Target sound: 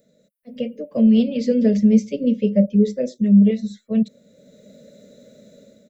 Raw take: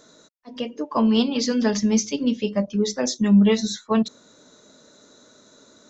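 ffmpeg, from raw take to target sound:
ffmpeg -i in.wav -filter_complex "[0:a]firequalizer=gain_entry='entry(110,0);entry(200,8);entry(320,-11);entry(550,7);entry(890,-29);entry(2100,-3);entry(3300,-10);entry(6600,-16);entry(9500,15)':delay=0.05:min_phase=1,dynaudnorm=framelen=130:gausssize=7:maxgain=13dB,asettb=1/sr,asplit=3[link_01][link_02][link_03];[link_01]atrim=end=1.464[link_04];[link_02]atrim=start=1.46:end=3.51,asetpts=PTS-STARTPTS,afade=type=in:duration=0.004:curve=qsin,afade=type=out:start_time=2.046:duration=0.004:curve=qsin,equalizer=frequency=390:width_type=o:width=0.95:gain=7.5[link_05];[link_03]atrim=start=3.506[link_06];[link_04][link_05]acrossfade=duration=0.004:curve1=hsin:curve2=qsin[link_07];[link_07][link_06]acrossfade=duration=0.004:curve1=qsin:curve2=hsin,volume=-6.5dB" out.wav

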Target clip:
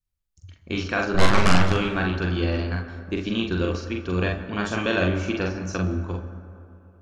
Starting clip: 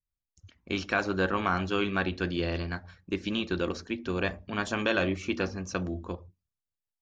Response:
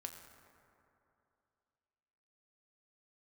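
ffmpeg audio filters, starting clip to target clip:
-filter_complex "[0:a]asettb=1/sr,asplit=3[link_01][link_02][link_03];[link_01]atrim=end=1.144[link_04];[link_02]atrim=start=1.14:end=1.72,asetpts=PTS-STARTPTS,afade=type=in:duration=0.004:curve=qsin,afade=type=out:start_time=0.576:duration=0.004:curve=qsin,aeval=exprs='0.211*(cos(1*acos(clip(val(0)/0.211,-1,1)))-cos(1*PI/2))+0.106*(cos(6*acos(clip(val(0)/0.211,-1,1)))-cos(6*PI/2))':channel_layout=same[link_05];[link_03]atrim=start=1.716[link_06];[link_04][link_05]acrossfade=duration=0.004:curve1=hsin:curve2=qsin[link_07];[link_07][link_06]acrossfade=duration=0.004:curve1=qsin:curve2=hsin,lowshelf=frequency=160:gain=7.5,asplit=2[link_08][link_09];[1:a]atrim=start_sample=2205,adelay=44[link_10];[link_09][link_10]afir=irnorm=-1:irlink=0,volume=2dB[link_11];[link_08][link_11]amix=inputs=2:normalize=0,volume=1dB"

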